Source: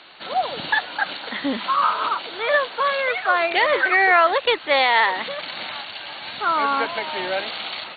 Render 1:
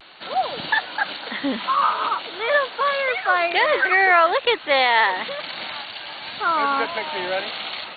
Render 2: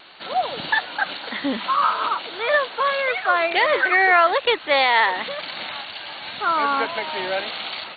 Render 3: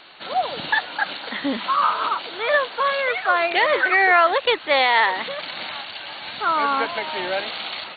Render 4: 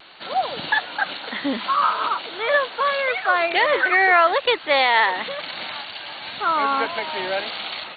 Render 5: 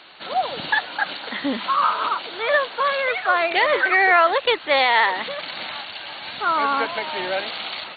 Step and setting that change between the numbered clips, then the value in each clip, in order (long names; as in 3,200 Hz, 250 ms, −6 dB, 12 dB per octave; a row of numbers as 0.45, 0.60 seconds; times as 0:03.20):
pitch vibrato, speed: 0.37, 1.7, 4.1, 0.72, 13 Hertz